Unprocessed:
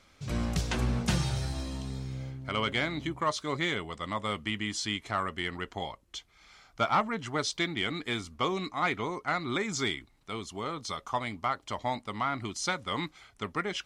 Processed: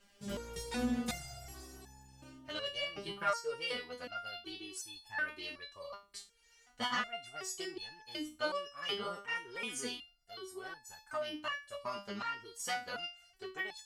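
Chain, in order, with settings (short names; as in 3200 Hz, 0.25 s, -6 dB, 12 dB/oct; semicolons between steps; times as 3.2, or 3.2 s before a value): formant shift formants +5 st; stepped resonator 2.7 Hz 200–870 Hz; gain +7.5 dB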